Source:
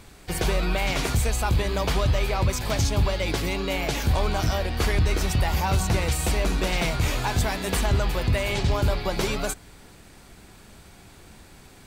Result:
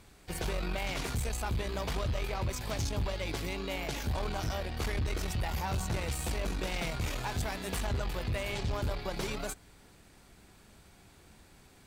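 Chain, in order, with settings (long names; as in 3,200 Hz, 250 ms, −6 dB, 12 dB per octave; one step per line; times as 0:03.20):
tube saturation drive 19 dB, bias 0.5
level −7 dB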